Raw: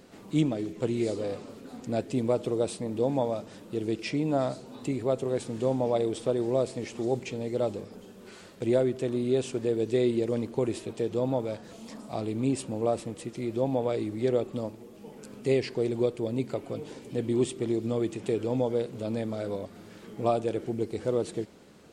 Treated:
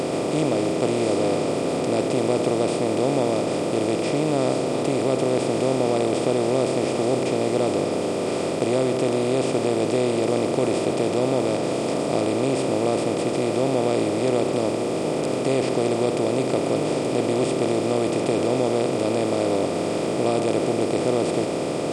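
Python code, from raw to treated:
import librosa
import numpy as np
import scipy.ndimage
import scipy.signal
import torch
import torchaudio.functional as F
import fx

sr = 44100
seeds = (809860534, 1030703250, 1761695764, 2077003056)

y = fx.bin_compress(x, sr, power=0.2)
y = F.gain(torch.from_numpy(y), -3.0).numpy()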